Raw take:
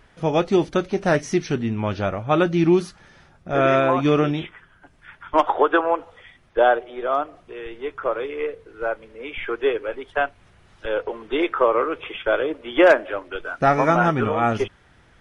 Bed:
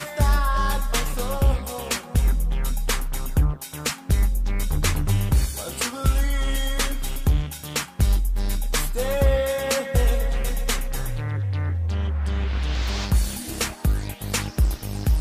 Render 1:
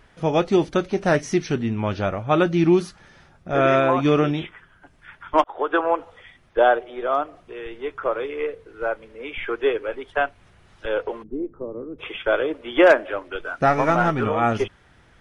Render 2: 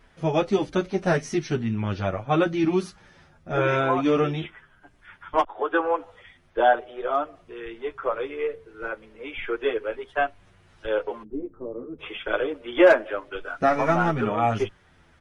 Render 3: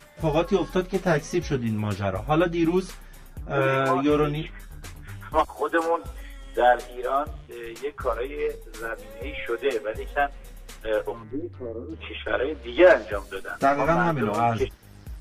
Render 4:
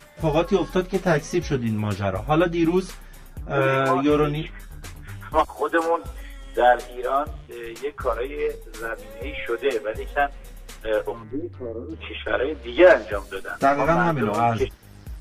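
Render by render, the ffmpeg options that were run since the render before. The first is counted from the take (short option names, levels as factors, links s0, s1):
-filter_complex "[0:a]asplit=3[s0][s1][s2];[s0]afade=t=out:st=11.22:d=0.02[s3];[s1]lowpass=f=210:t=q:w=1.7,afade=t=in:st=11.22:d=0.02,afade=t=out:st=11.98:d=0.02[s4];[s2]afade=t=in:st=11.98:d=0.02[s5];[s3][s4][s5]amix=inputs=3:normalize=0,asplit=3[s6][s7][s8];[s6]afade=t=out:st=13.66:d=0.02[s9];[s7]aeval=exprs='if(lt(val(0),0),0.708*val(0),val(0))':c=same,afade=t=in:st=13.66:d=0.02,afade=t=out:st=14.23:d=0.02[s10];[s8]afade=t=in:st=14.23:d=0.02[s11];[s9][s10][s11]amix=inputs=3:normalize=0,asplit=2[s12][s13];[s12]atrim=end=5.44,asetpts=PTS-STARTPTS,afade=t=out:st=5.436:d=0.004:c=hsin[s14];[s13]atrim=start=5.44,asetpts=PTS-STARTPTS,afade=t=in:d=0.42[s15];[s14][s15]concat=n=2:v=0:a=1"
-filter_complex "[0:a]asplit=2[s0][s1];[s1]adelay=8.6,afreqshift=-0.94[s2];[s0][s2]amix=inputs=2:normalize=1"
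-filter_complex "[1:a]volume=0.112[s0];[0:a][s0]amix=inputs=2:normalize=0"
-af "volume=1.26"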